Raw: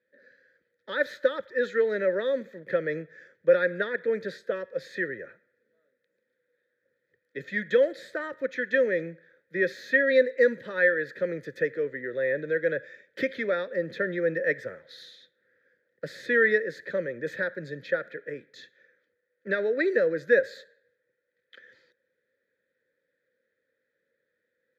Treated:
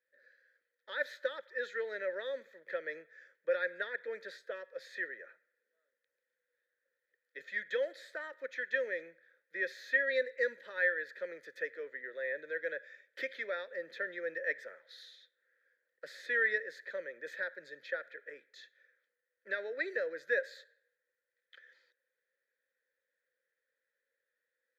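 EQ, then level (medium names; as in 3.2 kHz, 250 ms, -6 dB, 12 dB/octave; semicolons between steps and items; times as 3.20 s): high-pass 700 Hz 12 dB/octave; dynamic bell 1.2 kHz, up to -5 dB, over -48 dBFS, Q 3.9; -6.0 dB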